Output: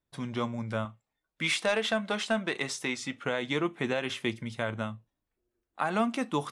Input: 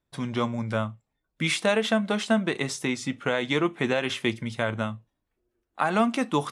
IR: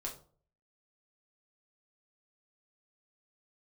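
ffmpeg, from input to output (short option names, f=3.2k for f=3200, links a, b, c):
-filter_complex "[0:a]asettb=1/sr,asplit=3[a][b][c];[a]atrim=end=0.854[d];[b]atrim=start=0.85:end=3.24,asetpts=PTS-STARTPTS,afade=t=in:d=0.004:c=qsin,afade=t=out:st=2.386:d=0.004:c=qsin,asplit=2[e][f];[f]highpass=f=720:p=1,volume=8dB,asoftclip=type=tanh:threshold=-10dB[g];[e][g]amix=inputs=2:normalize=0,lowpass=f=7.2k:p=1,volume=-6dB[h];[c]atrim=start=3.236[i];[d][h]acrossfade=d=0.004:c1=hsin:c2=qsin[j];[j][i]acrossfade=d=0.004:c1=qsin:c2=hsin,volume=-5dB"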